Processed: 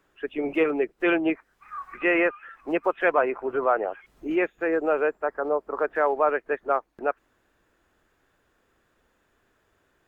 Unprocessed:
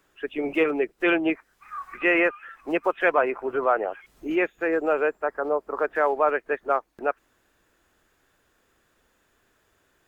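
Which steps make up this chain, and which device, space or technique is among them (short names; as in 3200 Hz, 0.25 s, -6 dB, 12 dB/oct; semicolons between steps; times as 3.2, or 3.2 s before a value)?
behind a face mask (high shelf 3300 Hz -8 dB)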